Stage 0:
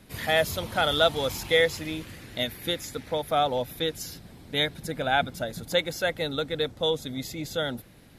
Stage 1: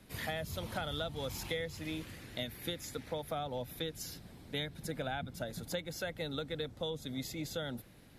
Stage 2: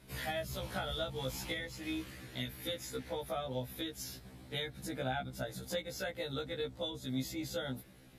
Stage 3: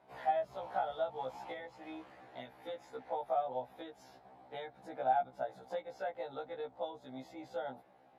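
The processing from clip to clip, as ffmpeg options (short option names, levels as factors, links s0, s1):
-filter_complex "[0:a]acrossover=split=220[s0][s1];[s1]acompressor=threshold=0.0316:ratio=10[s2];[s0][s2]amix=inputs=2:normalize=0,volume=0.531"
-af "afftfilt=real='re*1.73*eq(mod(b,3),0)':imag='im*1.73*eq(mod(b,3),0)':win_size=2048:overlap=0.75,volume=1.33"
-af "bandpass=f=780:t=q:w=4.3:csg=0,volume=3.35"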